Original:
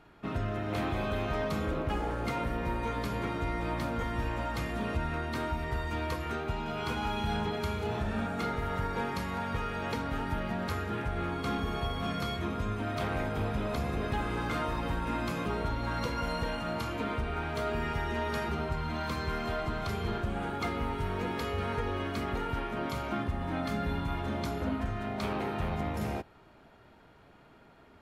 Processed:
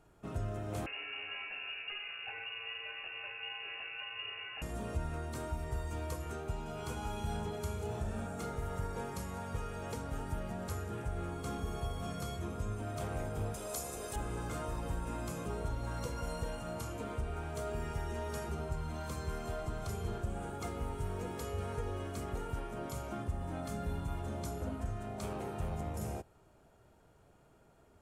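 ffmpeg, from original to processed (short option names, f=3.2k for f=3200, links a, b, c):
-filter_complex "[0:a]asettb=1/sr,asplit=3[a][b][c];[a]atrim=end=0.864[d];[b]atrim=start=0.86:end=4.62,asetpts=PTS-STARTPTS,afade=t=in:d=0.004:c=qsin,afade=t=out:st=3.756:d=0.004:c=qsin,lowpass=f=2.5k:t=q:w=0.5098,lowpass=f=2.5k:t=q:w=0.6013,lowpass=f=2.5k:t=q:w=0.9,lowpass=f=2.5k:t=q:w=2.563,afreqshift=-2900[e];[c]atrim=start=4.616[f];[d][e]acrossfade=d=0.004:c1=hsin:c2=qsin[g];[g][f]acrossfade=d=0.004:c1=qsin:c2=hsin,asettb=1/sr,asplit=3[h][i][j];[h]atrim=end=13.544[k];[i]atrim=start=13.54:end=14.16,asetpts=PTS-STARTPTS,afade=t=in:d=0.004:c=qsin,afade=t=out:st=0.616:d=0.004:c=qsin,bass=f=250:g=-13,treble=f=4k:g=12[l];[j]atrim=start=14.156[m];[k][l]acrossfade=d=0.004:c1=hsin:c2=qsin[n];[n][m]acrossfade=d=0.004:c1=qsin:c2=hsin,equalizer=f=250:t=o:w=1:g=-7,equalizer=f=1k:t=o:w=1:g=-5,equalizer=f=2k:t=o:w=1:g=-9,equalizer=f=4k:t=o:w=1:g=-9,equalizer=f=8k:t=o:w=1:g=10,volume=-2.5dB"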